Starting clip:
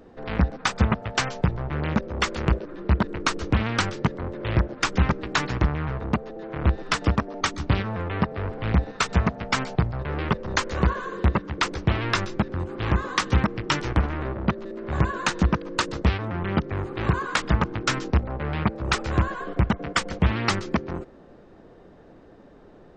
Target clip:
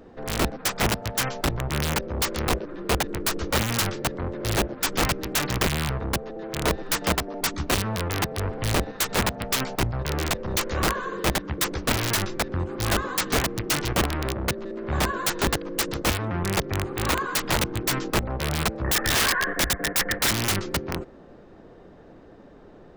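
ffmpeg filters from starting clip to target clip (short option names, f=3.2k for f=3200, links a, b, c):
-filter_complex "[0:a]asettb=1/sr,asplit=3[a][b][c];[a]atrim=end=18.844[d];[b]atrim=start=18.84:end=20.31,asetpts=PTS-STARTPTS,afade=t=in:d=0.004:c=qsin,afade=t=out:st=1.466:d=0.004:c=qsin,lowpass=f=1.8k:t=q:w=14[e];[c]atrim=start=20.306[f];[d][e]acrossfade=d=0.004:c1=hsin:c2=qsin[g];[g][f]acrossfade=d=0.004:c1=qsin:c2=hsin,aeval=exprs='(mod(7.5*val(0)+1,2)-1)/7.5':c=same,volume=1.5dB"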